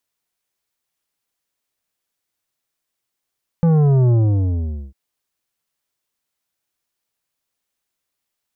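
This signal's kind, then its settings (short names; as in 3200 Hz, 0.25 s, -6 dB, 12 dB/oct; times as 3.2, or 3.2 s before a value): sub drop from 170 Hz, over 1.30 s, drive 10 dB, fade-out 0.82 s, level -12 dB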